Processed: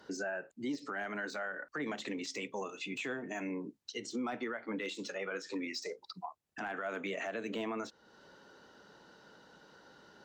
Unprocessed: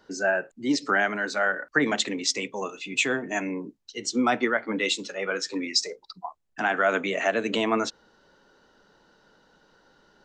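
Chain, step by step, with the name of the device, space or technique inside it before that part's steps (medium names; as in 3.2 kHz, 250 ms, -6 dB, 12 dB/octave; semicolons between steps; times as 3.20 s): podcast mastering chain (high-pass 72 Hz; de-esser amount 90%; compression 2:1, threshold -44 dBFS, peak gain reduction 14 dB; peak limiter -30.5 dBFS, peak gain reduction 6.5 dB; trim +2 dB; MP3 96 kbps 44.1 kHz)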